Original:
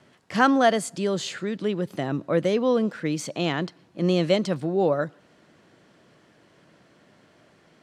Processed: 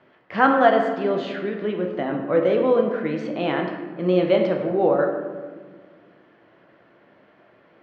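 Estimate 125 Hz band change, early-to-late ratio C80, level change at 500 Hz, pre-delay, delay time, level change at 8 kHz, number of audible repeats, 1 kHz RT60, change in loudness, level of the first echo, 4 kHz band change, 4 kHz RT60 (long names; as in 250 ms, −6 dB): −2.5 dB, 6.5 dB, +4.5 dB, 10 ms, no echo audible, below −20 dB, no echo audible, 1.4 s, +3.0 dB, no echo audible, −4.0 dB, 0.85 s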